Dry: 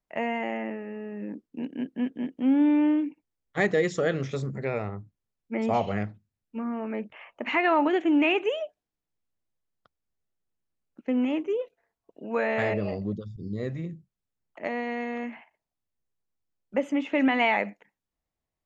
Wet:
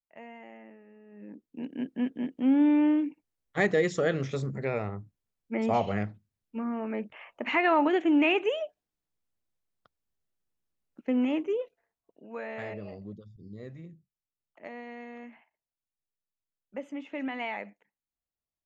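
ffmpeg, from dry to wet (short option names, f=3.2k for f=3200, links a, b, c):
-af "volume=-1dB,afade=t=in:st=1.06:d=0.2:silence=0.421697,afade=t=in:st=1.26:d=0.63:silence=0.354813,afade=t=out:st=11.45:d=0.82:silence=0.298538"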